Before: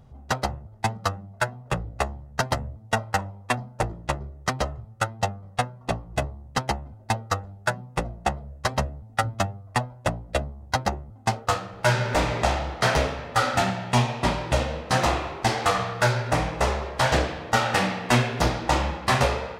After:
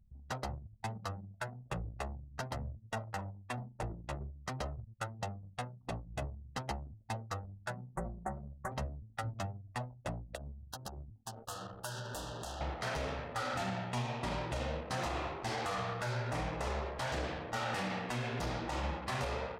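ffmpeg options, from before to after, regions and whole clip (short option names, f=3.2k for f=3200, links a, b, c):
-filter_complex "[0:a]asettb=1/sr,asplit=3[a][b][c];[a]atrim=end=7.954[d];[b]atrim=start=7.95:end=8.72,asetpts=PTS-STARTPTS,afade=t=in:d=0.004:c=qsin,afade=t=out:st=0.766:d=0.004:c=qsin,acompressor=mode=upward:threshold=-43dB:ratio=2.5:attack=3.2:release=140:knee=2.83:detection=peak,asuperstop=centerf=3700:order=8:qfactor=0.68,aecho=1:1:5.3:0.78,atrim=end_sample=33957[e];[c]atrim=start=8.716[f];[d][e]acrossfade=d=0.004:c1=hsin:c2=qsin[g];[g][f]acrossfade=d=0.004:c1=qsin:c2=hsin,asettb=1/sr,asplit=3[h][i][j];[h]atrim=end=10.354[k];[i]atrim=start=10.35:end=12.61,asetpts=PTS-STARTPTS,afade=t=in:d=0.004:c=qsin,afade=t=out:st=2.256:d=0.004:c=qsin,acompressor=threshold=-32dB:ratio=8:attack=3.2:release=140:knee=1:detection=peak,asuperstop=centerf=2200:order=8:qfactor=2.2,aemphasis=mode=production:type=75fm[l];[j]atrim=start=12.606[m];[k][l]acrossfade=d=0.004:c1=hsin:c2=qsin[n];[n][m]acrossfade=d=0.004:c1=qsin:c2=hsin,anlmdn=0.398,acompressor=threshold=-22dB:ratio=6,alimiter=limit=-21dB:level=0:latency=1:release=30,volume=-6.5dB"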